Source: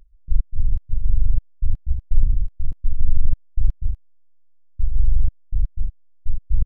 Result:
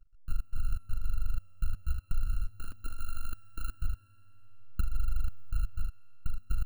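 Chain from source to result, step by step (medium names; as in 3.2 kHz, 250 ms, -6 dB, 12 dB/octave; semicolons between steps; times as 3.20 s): bit-reversed sample order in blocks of 32 samples; recorder AGC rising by 15 dB/s; 2.50–3.73 s: resonant low shelf 200 Hz -11 dB, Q 1.5; compression 3:1, threshold -18 dBFS, peak gain reduction 9 dB; hysteresis with a dead band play -46.5 dBFS; reverberation RT60 5.2 s, pre-delay 4 ms, DRR 15.5 dB; trim -6.5 dB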